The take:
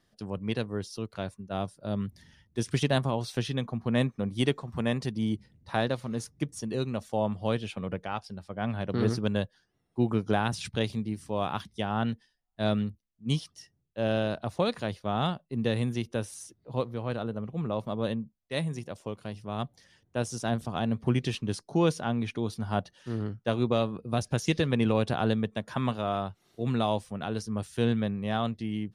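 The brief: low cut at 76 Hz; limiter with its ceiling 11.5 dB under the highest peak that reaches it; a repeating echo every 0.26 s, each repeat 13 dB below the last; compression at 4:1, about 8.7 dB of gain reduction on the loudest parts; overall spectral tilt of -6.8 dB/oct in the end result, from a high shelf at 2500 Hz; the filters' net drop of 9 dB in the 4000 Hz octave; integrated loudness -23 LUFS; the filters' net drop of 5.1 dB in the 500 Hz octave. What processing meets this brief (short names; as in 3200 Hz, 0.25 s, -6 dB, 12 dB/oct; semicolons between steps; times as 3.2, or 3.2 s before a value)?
HPF 76 Hz; bell 500 Hz -6 dB; high shelf 2500 Hz -6.5 dB; bell 4000 Hz -6 dB; compressor 4:1, threshold -33 dBFS; limiter -29.5 dBFS; feedback echo 0.26 s, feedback 22%, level -13 dB; gain +18 dB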